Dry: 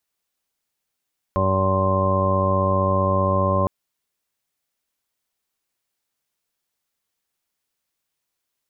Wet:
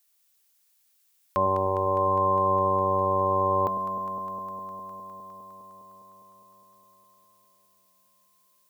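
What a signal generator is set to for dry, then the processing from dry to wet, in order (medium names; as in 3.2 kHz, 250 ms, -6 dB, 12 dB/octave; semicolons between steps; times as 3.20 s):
steady additive tone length 2.31 s, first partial 95.3 Hz, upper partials -4/-10.5/-8/-11.5/0/-17/-14/-18.5/-17/0 dB, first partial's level -22 dB
tilt EQ +3.5 dB/octave; on a send: echo whose repeats swap between lows and highs 102 ms, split 870 Hz, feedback 89%, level -7.5 dB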